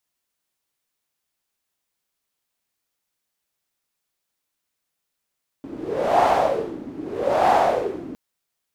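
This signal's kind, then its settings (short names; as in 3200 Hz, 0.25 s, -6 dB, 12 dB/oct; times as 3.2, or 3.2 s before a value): wind-like swept noise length 2.51 s, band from 280 Hz, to 770 Hz, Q 4.9, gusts 2, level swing 18.5 dB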